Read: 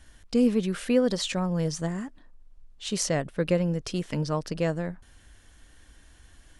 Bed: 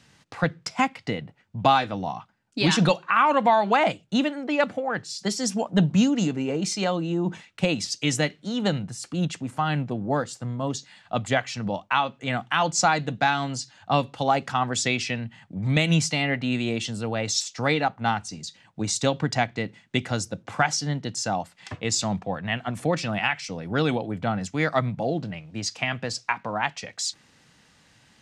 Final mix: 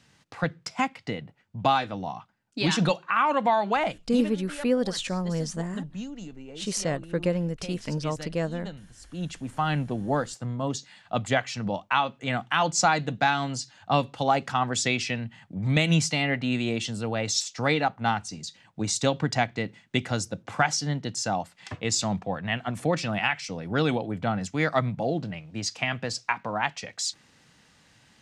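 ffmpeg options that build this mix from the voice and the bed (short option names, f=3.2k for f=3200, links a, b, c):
-filter_complex "[0:a]adelay=3750,volume=-1.5dB[a];[1:a]volume=12dB,afade=t=out:st=3.63:d=0.86:silence=0.223872,afade=t=in:st=8.95:d=0.7:silence=0.16788[b];[a][b]amix=inputs=2:normalize=0"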